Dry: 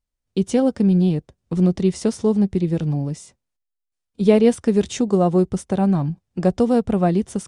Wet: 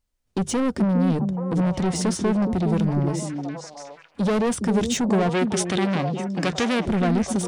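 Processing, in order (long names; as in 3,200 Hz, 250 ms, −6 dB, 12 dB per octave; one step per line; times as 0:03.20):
in parallel at −1 dB: brickwall limiter −13.5 dBFS, peak gain reduction 10.5 dB
on the sum: mains-hum notches 50/100/150 Hz
soft clipping −19 dBFS, distortion −7 dB
0:05.29–0:06.85: meter weighting curve D
echo through a band-pass that steps 415 ms, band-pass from 280 Hz, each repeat 1.4 octaves, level −1 dB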